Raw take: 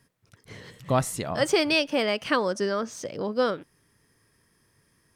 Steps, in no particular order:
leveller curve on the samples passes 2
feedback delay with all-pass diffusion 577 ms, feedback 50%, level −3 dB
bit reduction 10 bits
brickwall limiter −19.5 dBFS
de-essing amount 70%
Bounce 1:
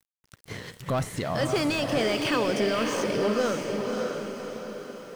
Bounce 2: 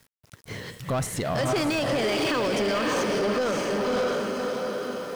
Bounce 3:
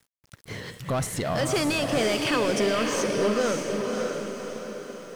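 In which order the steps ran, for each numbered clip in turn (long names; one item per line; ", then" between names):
leveller curve on the samples, then brickwall limiter, then de-essing, then feedback delay with all-pass diffusion, then bit reduction
de-essing, then feedback delay with all-pass diffusion, then brickwall limiter, then bit reduction, then leveller curve on the samples
brickwall limiter, then de-essing, then leveller curve on the samples, then feedback delay with all-pass diffusion, then bit reduction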